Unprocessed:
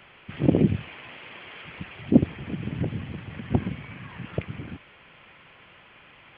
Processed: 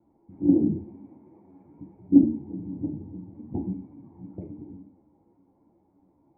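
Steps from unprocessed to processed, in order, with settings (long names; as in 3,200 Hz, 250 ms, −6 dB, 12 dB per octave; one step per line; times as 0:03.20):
adaptive Wiener filter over 15 samples
formant resonators in series u
coupled-rooms reverb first 0.51 s, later 3.3 s, from −27 dB, DRR 0 dB
string-ensemble chorus
level +5 dB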